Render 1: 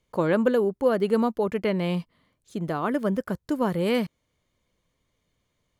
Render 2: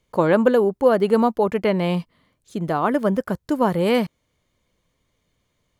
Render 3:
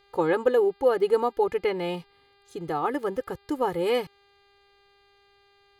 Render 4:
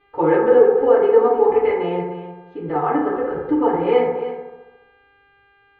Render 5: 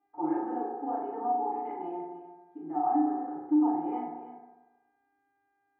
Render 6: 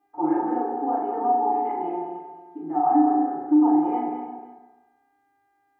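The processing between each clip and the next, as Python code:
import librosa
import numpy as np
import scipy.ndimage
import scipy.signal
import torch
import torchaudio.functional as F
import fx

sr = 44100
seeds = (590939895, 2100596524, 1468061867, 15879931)

y1 = fx.dynamic_eq(x, sr, hz=810.0, q=1.5, threshold_db=-36.0, ratio=4.0, max_db=5)
y1 = y1 * librosa.db_to_amplitude(4.0)
y2 = y1 + 0.86 * np.pad(y1, (int(2.4 * sr / 1000.0), 0))[:len(y1)]
y2 = fx.dmg_buzz(y2, sr, base_hz=400.0, harmonics=12, level_db=-54.0, tilt_db=-3, odd_only=False)
y2 = y2 * librosa.db_to_amplitude(-8.0)
y3 = scipy.signal.sosfilt(scipy.signal.butter(4, 2700.0, 'lowpass', fs=sr, output='sos'), y2)
y3 = y3 + 10.0 ** (-12.5 / 20.0) * np.pad(y3, (int(305 * sr / 1000.0), 0))[:len(y3)]
y3 = fx.rev_fdn(y3, sr, rt60_s=1.1, lf_ratio=0.9, hf_ratio=0.25, size_ms=20.0, drr_db=-7.5)
y3 = y3 * librosa.db_to_amplitude(-2.5)
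y4 = fx.double_bandpass(y3, sr, hz=480.0, octaves=1.3)
y4 = fx.doubler(y4, sr, ms=37.0, db=-3.0)
y4 = y4 * librosa.db_to_amplitude(-6.0)
y5 = y4 + 10.0 ** (-8.0 / 20.0) * np.pad(y4, (int(201 * sr / 1000.0), 0))[:len(y4)]
y5 = y5 * librosa.db_to_amplitude(7.0)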